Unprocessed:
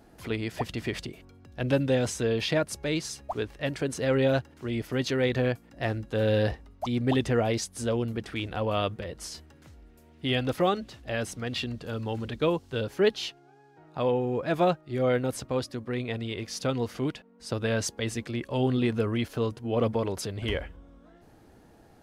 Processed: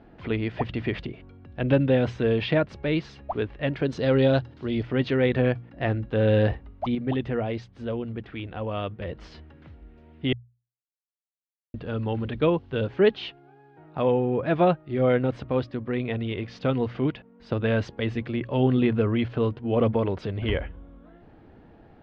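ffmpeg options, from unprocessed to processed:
-filter_complex "[0:a]asettb=1/sr,asplit=3[s0][s1][s2];[s0]atrim=end=3.854[s3];[s1]atrim=start=3.85:end=4.83,asetpts=PTS-STARTPTS,afade=t=in:d=0.004:c=qsin,afade=t=out:st=0.976:d=0.004:c=qsin,highshelf=f=3300:t=q:w=1.5:g=8.5[s4];[s2]atrim=start=4.826[s5];[s3][s4]acrossfade=d=0.004:c1=hsin:c2=qsin[s6];[s6][s5]acrossfade=d=0.004:c1=qsin:c2=hsin,asplit=5[s7][s8][s9][s10][s11];[s7]atrim=end=6.952[s12];[s8]atrim=start=6.948:end=9.012,asetpts=PTS-STARTPTS,volume=0.501[s13];[s9]atrim=start=9.008:end=10.33,asetpts=PTS-STARTPTS,afade=t=out:st=1.318:d=0.004:c=hsin[s14];[s10]atrim=start=10.33:end=11.74,asetpts=PTS-STARTPTS,volume=0[s15];[s11]atrim=start=11.74,asetpts=PTS-STARTPTS,afade=t=in:d=0.004:c=hsin[s16];[s12][s13]acrossfade=d=0.004:c1=hsin:c2=hsin[s17];[s14][s15][s16]concat=n=3:v=0:a=1[s18];[s17][s18]acrossfade=d=0.004:c1=hsin:c2=hsin,lowpass=f=3300:w=0.5412,lowpass=f=3300:w=1.3066,lowshelf=f=350:g=4,bandreject=f=60:t=h:w=6,bandreject=f=120:t=h:w=6,volume=1.26"

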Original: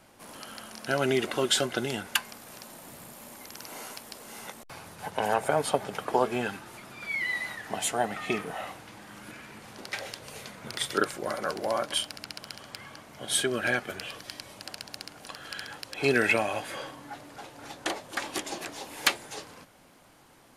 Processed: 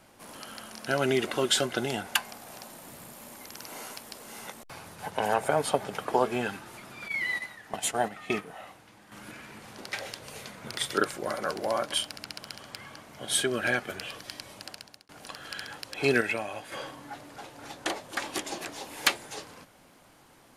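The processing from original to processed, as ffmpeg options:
-filter_complex "[0:a]asettb=1/sr,asplit=3[s0][s1][s2];[s0]atrim=end=1.794[s3];[s1]atrim=start=1.79:end=2.68,asetpts=PTS-STARTPTS,afade=t=in:d=0.004:c=qsin,afade=t=out:st=0.886:d=0.004:c=qsin,equalizer=f=740:w=2.8:g=6.5[s4];[s2]atrim=start=2.676[s5];[s3][s4]acrossfade=d=0.004:c1=hsin:c2=qsin[s6];[s6][s5]acrossfade=d=0.004:c1=qsin:c2=hsin,asettb=1/sr,asplit=3[s7][s8][s9];[s7]atrim=end=7.084[s10];[s8]atrim=start=7.08:end=9.12,asetpts=PTS-STARTPTS,afade=t=in:d=0.004:c=qsin,afade=t=out:st=2.036:d=0.004:c=qsin,agate=range=0.398:threshold=0.02:ratio=16:release=100:detection=peak[s11];[s9]atrim=start=9.116[s12];[s10][s11]acrossfade=d=0.004:c1=hsin:c2=qsin[s13];[s13][s12]acrossfade=d=0.004:c1=qsin:c2=hsin,asplit=4[s14][s15][s16][s17];[s14]atrim=end=15.09,asetpts=PTS-STARTPTS,afade=t=out:st=14.6:d=0.49[s18];[s15]atrim=start=15.09:end=16.212,asetpts=PTS-STARTPTS,afade=t=in:d=0.004:c=hsin[s19];[s16]atrim=start=16.208:end=16.722,asetpts=PTS-STARTPTS,volume=0.473[s20];[s17]atrim=start=16.718[s21];[s18][s19]concat=n=2:v=0:a=1[s22];[s22][s20]acrossfade=d=0.004:c1=hsin:c2=hsin[s23];[s23][s21]acrossfade=d=0.004:c1=hsin:c2=hsin"

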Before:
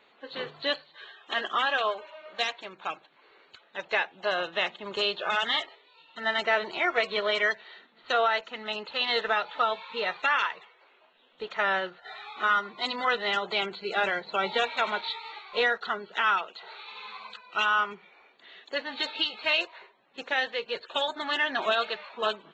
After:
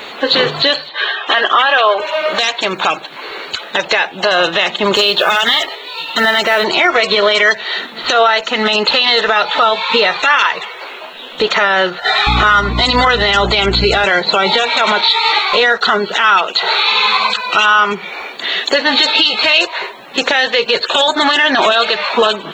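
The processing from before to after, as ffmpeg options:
-filter_complex "[0:a]asettb=1/sr,asplit=3[s0][s1][s2];[s0]atrim=end=0.894[s3];[s1]atrim=start=0.89:end=2,asetpts=PTS-STARTPTS,afade=t=in:d=0.004:c=qsin,afade=t=out:st=1.106:d=0.004:c=qsin,highpass=360,lowpass=3300[s4];[s2]atrim=start=1.996[s5];[s3][s4]acrossfade=d=0.004:c1=hsin:c2=qsin[s6];[s6][s5]acrossfade=d=0.004:c1=qsin:c2=hsin,asettb=1/sr,asplit=3[s7][s8][s9];[s7]atrim=end=4.944[s10];[s8]atrim=start=4.94:end=6.64,asetpts=PTS-STARTPTS,afade=t=in:d=0.004:c=qsin,afade=t=out:st=1.696:d=0.004:c=qsin,acrusher=bits=9:mode=log:mix=0:aa=0.000001[s11];[s9]atrim=start=6.636[s12];[s10][s11]acrossfade=d=0.004:c1=hsin:c2=qsin[s13];[s13][s12]acrossfade=d=0.004:c1=qsin:c2=hsin,asettb=1/sr,asplit=3[s14][s15][s16];[s14]atrim=end=12.274[s17];[s15]atrim=start=12.27:end=14.05,asetpts=PTS-STARTPTS,afade=t=in:d=0.004:c=qsin,afade=t=out:st=1.776:d=0.004:c=qsin,aeval=exprs='val(0)+0.00891*(sin(2*PI*60*n/s)+sin(2*PI*2*60*n/s)/2+sin(2*PI*3*60*n/s)/3+sin(2*PI*4*60*n/s)/4+sin(2*PI*5*60*n/s)/5)':c=same[s18];[s16]atrim=start=14.046[s19];[s17][s18]acrossfade=d=0.004:c1=hsin:c2=qsin[s20];[s20][s19]acrossfade=d=0.004:c1=qsin:c2=hsin,acompressor=threshold=0.00794:ratio=2,bass=f=250:g=0,treble=f=4000:g=8,alimiter=level_in=39.8:limit=0.891:release=50:level=0:latency=1,volume=0.891"

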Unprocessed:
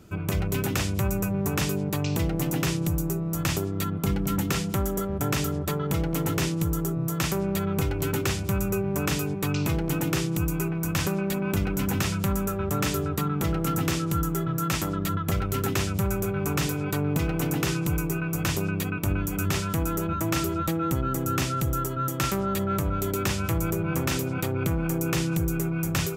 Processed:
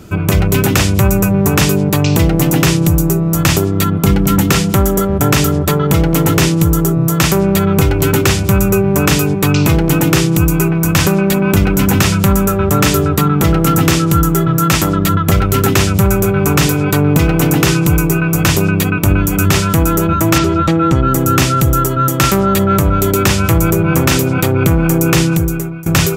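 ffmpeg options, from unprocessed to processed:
-filter_complex "[0:a]asettb=1/sr,asplit=3[s0][s1][s2];[s0]atrim=end=20.384[s3];[s1]atrim=start=20.38:end=21.08,asetpts=PTS-STARTPTS,afade=t=in:d=0.004:c=qsin,afade=t=out:st=0.696:d=0.004:c=qsin,lowpass=5100[s4];[s2]atrim=start=21.076[s5];[s3][s4]acrossfade=d=0.004:c1=hsin:c2=qsin[s6];[s6][s5]acrossfade=d=0.004:c1=qsin:c2=hsin,asplit=2[s7][s8];[s7]atrim=end=25.86,asetpts=PTS-STARTPTS,afade=t=out:st=25.21:d=0.65:silence=0.0944061[s9];[s8]atrim=start=25.86,asetpts=PTS-STARTPTS,afade=t=in:d=0.004:c=hsin:silence=0.0944061[s10];[s9][s10]concat=n=2:v=0:a=1,acontrast=89,volume=2.37"

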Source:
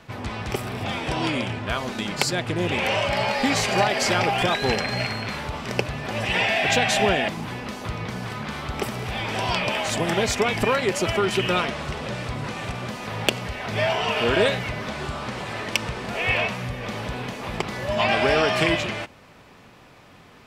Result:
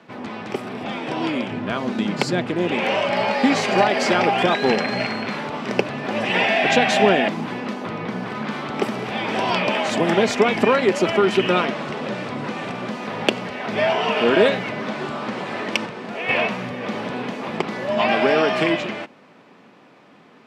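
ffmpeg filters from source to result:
-filter_complex "[0:a]asettb=1/sr,asplit=3[s0][s1][s2];[s0]atrim=end=1.514[s3];[s1]atrim=start=1.51:end=2.47,asetpts=PTS-STARTPTS,afade=t=in:d=0.004:c=qsin,afade=t=out:st=0.956:d=0.004:c=qsin,lowshelf=f=200:g=11[s4];[s2]atrim=start=2.466[s5];[s3][s4]acrossfade=d=0.004:c1=hsin:c2=qsin[s6];[s6][s5]acrossfade=d=0.004:c1=qsin:c2=hsin,asettb=1/sr,asplit=3[s7][s8][s9];[s7]atrim=end=7.734[s10];[s8]atrim=start=7.73:end=8.35,asetpts=PTS-STARTPTS,afade=t=in:d=0.004:c=qsin,afade=t=out:st=0.616:d=0.004:c=qsin,equalizer=f=7600:t=o:w=2.1:g=-4.5[s11];[s9]atrim=start=8.346[s12];[s10][s11]acrossfade=d=0.004:c1=hsin:c2=qsin[s13];[s13][s12]acrossfade=d=0.004:c1=qsin:c2=hsin,asplit=3[s14][s15][s16];[s14]atrim=end=15.862[s17];[s15]atrim=start=15.858:end=16.292,asetpts=PTS-STARTPTS,volume=0.562[s18];[s16]atrim=start=16.288[s19];[s17][s18]acrossfade=d=0.004:c1=hsin:c2=hsin[s20];[s20][s19]acrossfade=d=0.004:c1=hsin:c2=hsin,highpass=f=210:w=0.5412,highpass=f=210:w=1.3066,aemphasis=mode=reproduction:type=bsi,dynaudnorm=f=250:g=21:m=2.24"

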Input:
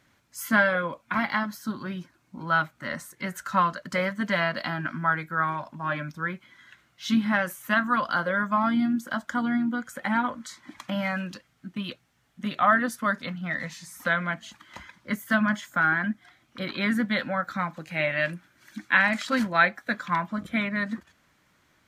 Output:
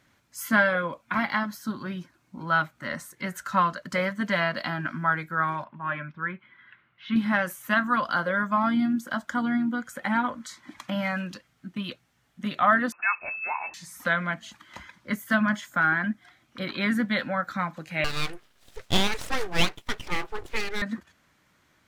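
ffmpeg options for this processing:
-filter_complex "[0:a]asettb=1/sr,asplit=3[s0][s1][s2];[s0]atrim=end=5.644[s3];[s1]atrim=start=5.64:end=7.16,asetpts=PTS-STARTPTS,afade=t=in:d=0.004:c=qsin,afade=t=out:st=1.516:d=0.004:c=qsin,highpass=100,equalizer=f=160:t=q:w=4:g=-3,equalizer=f=280:t=q:w=4:g=-8,equalizer=f=490:t=q:w=4:g=-5,equalizer=f=700:t=q:w=4:g=-7,lowpass=f=2800:w=0.5412,lowpass=f=2800:w=1.3066[s4];[s2]atrim=start=7.156[s5];[s3][s4]acrossfade=d=0.004:c1=hsin:c2=qsin[s6];[s6][s5]acrossfade=d=0.004:c1=qsin:c2=hsin,asettb=1/sr,asplit=3[s7][s8][s9];[s7]atrim=end=12.924[s10];[s8]atrim=start=12.92:end=13.74,asetpts=PTS-STARTPTS,afade=t=in:d=0.004:c=qsin,afade=t=out:st=0.816:d=0.004:c=qsin,lowpass=f=2400:t=q:w=0.5098,lowpass=f=2400:t=q:w=0.6013,lowpass=f=2400:t=q:w=0.9,lowpass=f=2400:t=q:w=2.563,afreqshift=-2800[s11];[s9]atrim=start=13.736[s12];[s10][s11]acrossfade=d=0.004:c1=hsin:c2=qsin[s13];[s13][s12]acrossfade=d=0.004:c1=qsin:c2=hsin,asettb=1/sr,asplit=3[s14][s15][s16];[s14]atrim=end=18.044[s17];[s15]atrim=start=18.04:end=20.82,asetpts=PTS-STARTPTS,afade=t=in:d=0.004:c=qsin,afade=t=out:st=2.776:d=0.004:c=qsin,aeval=exprs='abs(val(0))':c=same[s18];[s16]atrim=start=20.816[s19];[s17][s18]acrossfade=d=0.004:c1=hsin:c2=qsin[s20];[s20][s19]acrossfade=d=0.004:c1=qsin:c2=hsin"

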